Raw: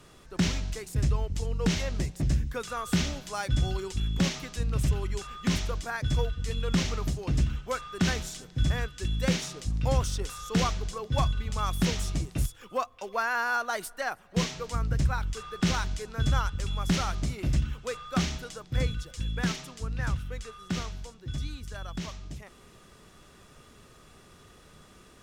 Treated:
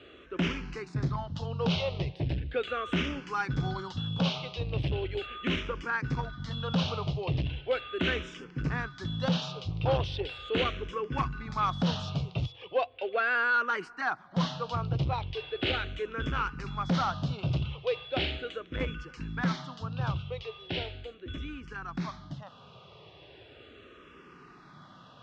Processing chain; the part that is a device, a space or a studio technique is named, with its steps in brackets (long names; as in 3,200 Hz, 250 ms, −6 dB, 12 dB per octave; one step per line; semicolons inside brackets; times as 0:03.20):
barber-pole phaser into a guitar amplifier (frequency shifter mixed with the dry sound −0.38 Hz; soft clipping −25.5 dBFS, distortion −13 dB; loudspeaker in its box 110–3,800 Hz, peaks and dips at 210 Hz −7 dB, 1,900 Hz −5 dB, 2,900 Hz +3 dB)
level +7 dB